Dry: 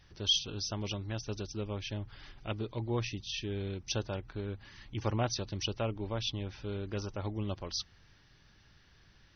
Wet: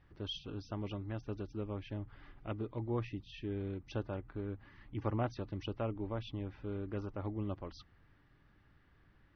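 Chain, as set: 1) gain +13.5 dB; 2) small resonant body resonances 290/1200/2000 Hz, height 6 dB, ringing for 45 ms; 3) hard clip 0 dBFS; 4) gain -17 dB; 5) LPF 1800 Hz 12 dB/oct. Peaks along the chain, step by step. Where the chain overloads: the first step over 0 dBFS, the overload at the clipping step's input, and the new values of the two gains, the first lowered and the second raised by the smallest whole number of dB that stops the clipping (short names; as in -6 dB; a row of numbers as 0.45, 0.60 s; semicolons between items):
-3.5, -3.0, -3.0, -20.0, -20.5 dBFS; no overload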